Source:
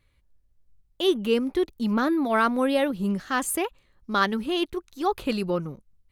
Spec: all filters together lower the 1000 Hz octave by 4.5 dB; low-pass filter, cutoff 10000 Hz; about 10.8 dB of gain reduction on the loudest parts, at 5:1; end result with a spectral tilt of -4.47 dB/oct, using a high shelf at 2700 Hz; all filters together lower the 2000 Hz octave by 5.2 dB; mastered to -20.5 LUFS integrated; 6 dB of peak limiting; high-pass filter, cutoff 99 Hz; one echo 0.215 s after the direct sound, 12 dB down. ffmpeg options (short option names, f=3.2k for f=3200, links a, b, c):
-af "highpass=99,lowpass=10k,equalizer=f=1k:t=o:g=-4.5,equalizer=f=2k:t=o:g=-8,highshelf=f=2.7k:g=6,acompressor=threshold=-30dB:ratio=5,alimiter=level_in=1.5dB:limit=-24dB:level=0:latency=1,volume=-1.5dB,aecho=1:1:215:0.251,volume=14.5dB"